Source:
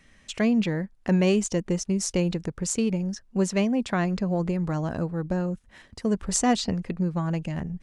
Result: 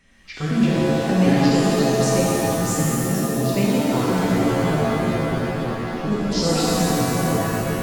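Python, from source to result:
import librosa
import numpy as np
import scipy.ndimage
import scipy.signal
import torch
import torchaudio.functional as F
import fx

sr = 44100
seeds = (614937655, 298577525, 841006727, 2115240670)

y = fx.pitch_trill(x, sr, semitones=-6.5, every_ms=253)
y = fx.rev_shimmer(y, sr, seeds[0], rt60_s=2.9, semitones=7, shimmer_db=-2, drr_db=-6.0)
y = F.gain(torch.from_numpy(y), -2.5).numpy()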